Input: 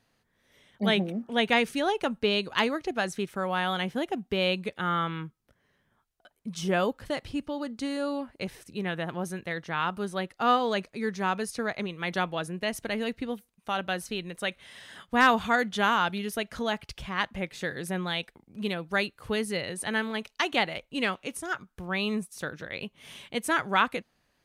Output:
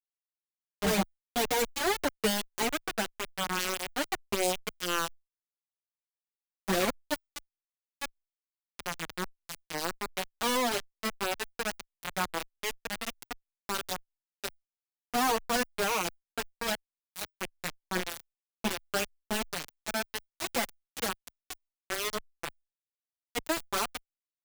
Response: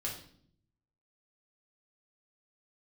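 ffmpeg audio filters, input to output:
-filter_complex "[0:a]asettb=1/sr,asplit=3[s0][s1][s2];[s0]atrim=end=17.954[s3];[s1]atrim=start=17.95:end=19.15,asetpts=PTS-STARTPTS,afade=t=in:d=0.004:c=qsin,afade=t=out:st=1.196:d=0.004:c=qsin,bass=f=250:g=5,treble=f=4000:g=-10[s4];[s2]atrim=start=19.146[s5];[s3][s4]acrossfade=d=0.004:c1=hsin:c2=qsin[s6];[s6][s5]acrossfade=d=0.004:c1=qsin:c2=hsin,acrossover=split=300|1100|5300[s7][s8][s9][s10];[s9]aeval=exprs='0.0355*(abs(mod(val(0)/0.0355+3,4)-2)-1)':c=same[s11];[s7][s8][s11][s10]amix=inputs=4:normalize=0,acrusher=bits=3:mix=0:aa=0.000001,asplit=2[s12][s13];[s13]adelay=5.4,afreqshift=1.6[s14];[s12][s14]amix=inputs=2:normalize=1"

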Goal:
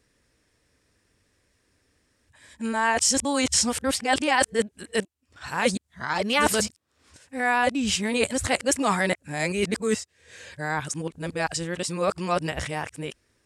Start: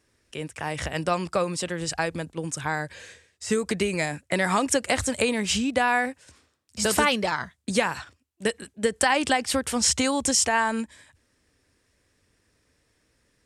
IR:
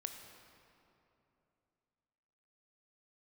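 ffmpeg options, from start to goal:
-af "areverse"

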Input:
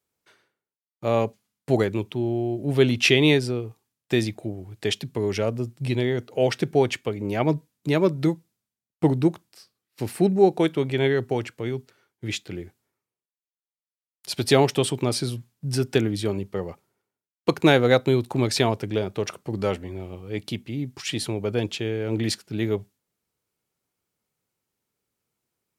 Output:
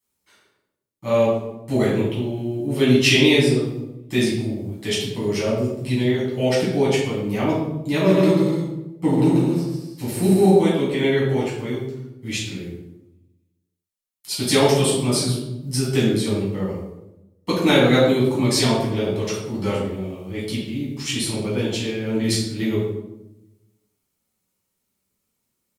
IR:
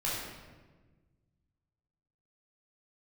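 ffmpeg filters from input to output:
-filter_complex "[0:a]highshelf=f=5600:g=10,asplit=3[s0][s1][s2];[s0]afade=t=out:st=8.06:d=0.02[s3];[s1]aecho=1:1:140|231|290.2|328.6|353.6:0.631|0.398|0.251|0.158|0.1,afade=t=in:st=8.06:d=0.02,afade=t=out:st=10.54:d=0.02[s4];[s2]afade=t=in:st=10.54:d=0.02[s5];[s3][s4][s5]amix=inputs=3:normalize=0[s6];[1:a]atrim=start_sample=2205,asetrate=79380,aresample=44100[s7];[s6][s7]afir=irnorm=-1:irlink=0"

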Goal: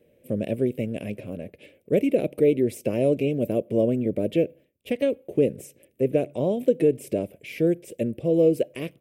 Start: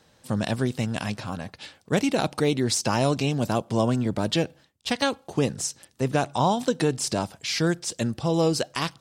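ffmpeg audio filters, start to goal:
-af "firequalizer=gain_entry='entry(120,0);entry(400,11);entry(580,10);entry(820,-17);entry(1400,-17);entry(2300,3);entry(4300,-21);entry(6500,-17);entry(12000,5)':delay=0.05:min_phase=1,volume=0.562"

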